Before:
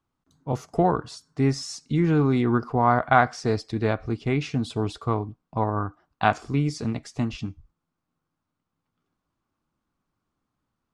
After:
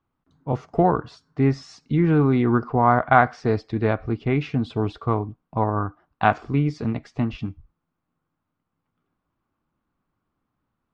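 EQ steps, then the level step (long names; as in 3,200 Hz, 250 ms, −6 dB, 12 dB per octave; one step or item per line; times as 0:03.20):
low-pass filter 2,800 Hz 12 dB per octave
+2.5 dB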